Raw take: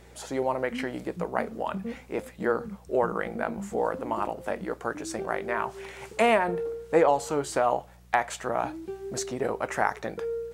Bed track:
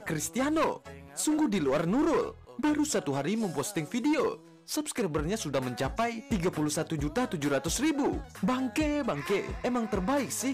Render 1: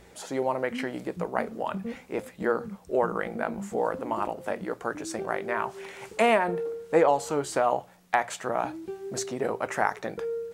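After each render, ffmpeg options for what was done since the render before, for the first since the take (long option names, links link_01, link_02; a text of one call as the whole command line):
ffmpeg -i in.wav -af "bandreject=frequency=60:width_type=h:width=4,bandreject=frequency=120:width_type=h:width=4" out.wav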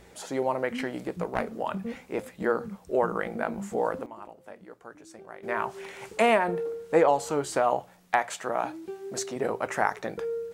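ffmpeg -i in.wav -filter_complex "[0:a]asettb=1/sr,asplit=3[link_01][link_02][link_03];[link_01]atrim=end=0.724[link_04];[link_02]atrim=start=0.72:end=1.45,asetpts=PTS-STARTPTS,afade=type=in:duration=0.004:curve=qsin,afade=type=out:start_time=0.726:duration=0.004:curve=qsin,aeval=exprs='clip(val(0),-1,0.0501)':channel_layout=same[link_05];[link_03]atrim=start=1.446[link_06];[link_04][link_05]acrossfade=duration=0.004:curve1=hsin:curve2=qsin[link_07];[link_07][link_06]acrossfade=duration=0.004:curve1=qsin:curve2=hsin,asettb=1/sr,asplit=3[link_08][link_09][link_10];[link_08]atrim=end=8.194[link_11];[link_09]atrim=start=8.19:end=9.36,asetpts=PTS-STARTPTS,afade=type=in:duration=0.004:curve=qsin,afade=type=out:start_time=1.166:duration=0.004:curve=qsin,lowshelf=frequency=140:gain=-10.5[link_12];[link_10]atrim=start=9.356[link_13];[link_11][link_12]acrossfade=duration=0.004:curve1=hsin:curve2=qsin[link_14];[link_14][link_13]acrossfade=duration=0.004:curve1=qsin:curve2=hsin,asplit=3[link_15][link_16][link_17];[link_15]atrim=end=4.06,asetpts=PTS-STARTPTS,afade=type=out:start_time=3.82:duration=0.24:curve=log:silence=0.188365[link_18];[link_16]atrim=start=4.06:end=5.43,asetpts=PTS-STARTPTS,volume=-14.5dB[link_19];[link_17]atrim=start=5.43,asetpts=PTS-STARTPTS,afade=type=in:duration=0.24:curve=log:silence=0.188365[link_20];[link_18][link_19][link_20]concat=n=3:v=0:a=1" out.wav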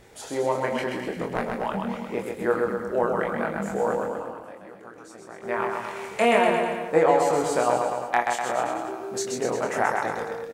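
ffmpeg -i in.wav -filter_complex "[0:a]asplit=2[link_01][link_02];[link_02]adelay=25,volume=-4dB[link_03];[link_01][link_03]amix=inputs=2:normalize=0,aecho=1:1:130|247|352.3|447.1|532.4:0.631|0.398|0.251|0.158|0.1" out.wav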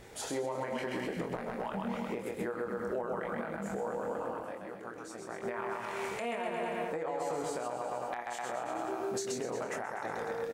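ffmpeg -i in.wav -af "acompressor=threshold=-29dB:ratio=6,alimiter=level_in=2dB:limit=-24dB:level=0:latency=1:release=126,volume=-2dB" out.wav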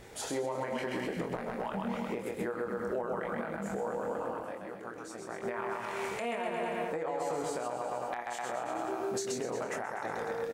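ffmpeg -i in.wav -af "volume=1dB" out.wav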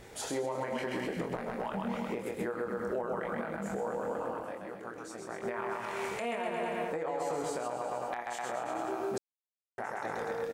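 ffmpeg -i in.wav -filter_complex "[0:a]asplit=3[link_01][link_02][link_03];[link_01]atrim=end=9.18,asetpts=PTS-STARTPTS,afade=type=out:start_time=9.176:duration=0.004:curve=hsin[link_04];[link_02]atrim=start=9.18:end=9.78,asetpts=PTS-STARTPTS,volume=0[link_05];[link_03]atrim=start=9.78,asetpts=PTS-STARTPTS,afade=type=in:duration=0.004:curve=hsin[link_06];[link_04][link_05][link_06]concat=n=3:v=0:a=1" out.wav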